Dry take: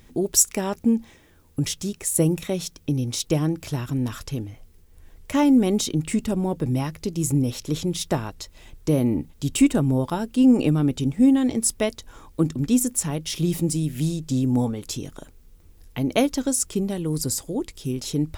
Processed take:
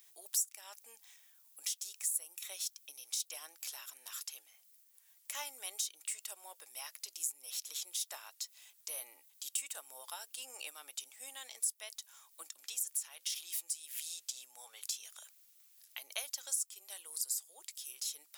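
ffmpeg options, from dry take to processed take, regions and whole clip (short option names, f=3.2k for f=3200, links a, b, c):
-filter_complex "[0:a]asettb=1/sr,asplit=3[a][b][c];[a]atrim=end=12.594[d];[b]atrim=start=12.59:end=16.02,asetpts=PTS-STARTPTS,afade=t=in:d=0.004:c=qsin,afade=t=out:st=3.426:d=0.004:c=qsin,equalizer=f=2.7k:w=0.43:g=5,acompressor=threshold=-24dB:ratio=3:attack=3.2:release=140:knee=1:detection=peak[e];[c]atrim=start=16.016[f];[d][e]acrossfade=d=0.004:c1=hsin:c2=qsin[g];[g][f]acrossfade=d=0.004:c1=qsin:c2=hsin,highpass=f=610:w=0.5412,highpass=f=610:w=1.3066,aderivative,acompressor=threshold=-35dB:ratio=3,volume=-1dB"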